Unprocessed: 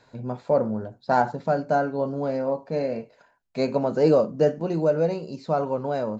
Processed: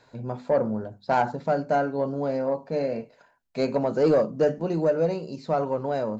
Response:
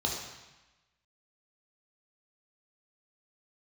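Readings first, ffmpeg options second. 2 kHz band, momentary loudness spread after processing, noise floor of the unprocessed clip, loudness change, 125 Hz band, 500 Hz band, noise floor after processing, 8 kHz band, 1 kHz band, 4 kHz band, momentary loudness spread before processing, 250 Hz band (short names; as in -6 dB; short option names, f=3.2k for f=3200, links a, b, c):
-0.5 dB, 10 LU, -62 dBFS, -1.0 dB, -2.0 dB, -1.0 dB, -61 dBFS, n/a, -1.5 dB, -1.0 dB, 11 LU, -1.0 dB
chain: -af "bandreject=f=50:t=h:w=6,bandreject=f=100:t=h:w=6,bandreject=f=150:t=h:w=6,bandreject=f=200:t=h:w=6,bandreject=f=250:t=h:w=6,asoftclip=type=tanh:threshold=-12dB"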